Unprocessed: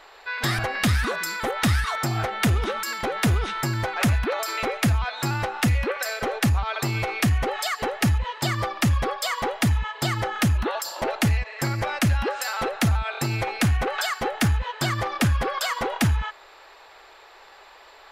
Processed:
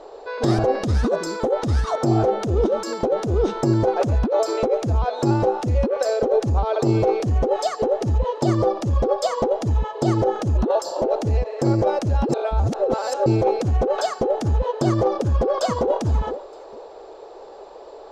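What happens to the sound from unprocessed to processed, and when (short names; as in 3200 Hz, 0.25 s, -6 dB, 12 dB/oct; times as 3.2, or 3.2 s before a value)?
12.29–13.26 reverse
15.22–15.96 echo throw 0.46 s, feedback 25%, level -16.5 dB
whole clip: EQ curve 110 Hz 0 dB, 470 Hz +14 dB, 2000 Hz -18 dB, 6400 Hz -4 dB, 13000 Hz -25 dB; negative-ratio compressor -21 dBFS, ratio -1; gain +2.5 dB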